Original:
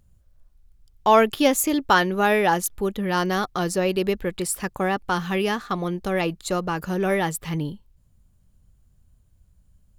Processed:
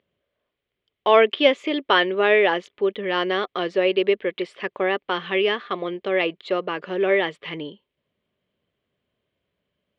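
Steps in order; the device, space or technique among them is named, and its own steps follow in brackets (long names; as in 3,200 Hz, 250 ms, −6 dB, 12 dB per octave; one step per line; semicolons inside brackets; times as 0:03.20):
phone earpiece (loudspeaker in its box 400–3,300 Hz, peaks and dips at 400 Hz +6 dB, 580 Hz +3 dB, 830 Hz −8 dB, 1,400 Hz −5 dB, 2,100 Hz +5 dB, 3,200 Hz +7 dB)
level +2 dB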